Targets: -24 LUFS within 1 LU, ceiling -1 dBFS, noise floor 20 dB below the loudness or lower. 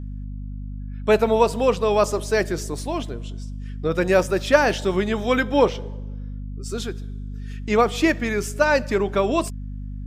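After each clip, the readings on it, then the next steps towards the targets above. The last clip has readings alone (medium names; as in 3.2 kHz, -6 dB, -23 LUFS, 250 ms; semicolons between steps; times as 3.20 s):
hum 50 Hz; highest harmonic 250 Hz; hum level -29 dBFS; loudness -21.5 LUFS; peak level -1.5 dBFS; loudness target -24.0 LUFS
-> hum notches 50/100/150/200/250 Hz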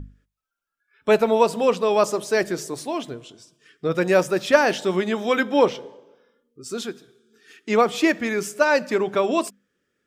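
hum not found; loudness -21.5 LUFS; peak level -1.5 dBFS; loudness target -24.0 LUFS
-> trim -2.5 dB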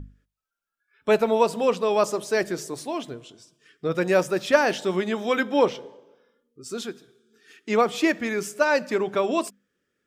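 loudness -24.0 LUFS; peak level -4.0 dBFS; noise floor -84 dBFS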